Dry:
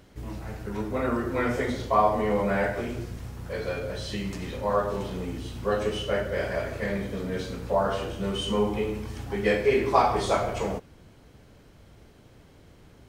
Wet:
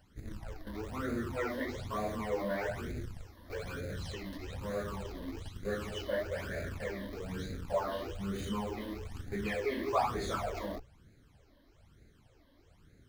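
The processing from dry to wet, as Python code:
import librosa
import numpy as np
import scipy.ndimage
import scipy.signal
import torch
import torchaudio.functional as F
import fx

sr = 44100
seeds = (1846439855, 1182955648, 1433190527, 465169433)

p1 = fx.hum_notches(x, sr, base_hz=60, count=4)
p2 = fx.schmitt(p1, sr, flips_db=-31.5)
p3 = p1 + F.gain(torch.from_numpy(p2), -7.0).numpy()
p4 = fx.phaser_stages(p3, sr, stages=12, low_hz=130.0, high_hz=1000.0, hz=1.1, feedback_pct=25)
y = F.gain(torch.from_numpy(p4), -7.5).numpy()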